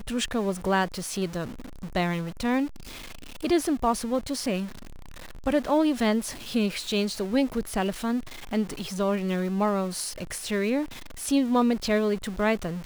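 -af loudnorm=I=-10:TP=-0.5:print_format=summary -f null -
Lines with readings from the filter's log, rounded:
Input Integrated:    -27.0 LUFS
Input True Peak:     -11.1 dBTP
Input LRA:             2.2 LU
Input Threshold:     -37.3 LUFS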